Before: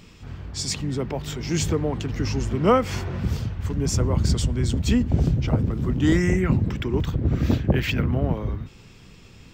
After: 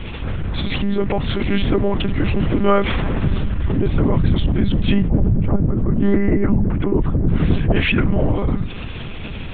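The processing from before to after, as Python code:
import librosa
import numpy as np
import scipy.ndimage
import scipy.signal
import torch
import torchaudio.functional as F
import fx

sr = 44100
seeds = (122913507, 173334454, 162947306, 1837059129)

y = fx.lowpass(x, sr, hz=1200.0, slope=12, at=(5.08, 7.29))
y = fx.lpc_monotone(y, sr, seeds[0], pitch_hz=200.0, order=10)
y = fx.env_flatten(y, sr, amount_pct=50)
y = F.gain(torch.from_numpy(y), 2.5).numpy()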